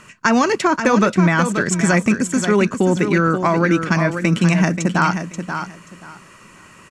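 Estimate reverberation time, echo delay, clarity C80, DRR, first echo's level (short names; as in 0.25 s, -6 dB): none, 0.532 s, none, none, -8.0 dB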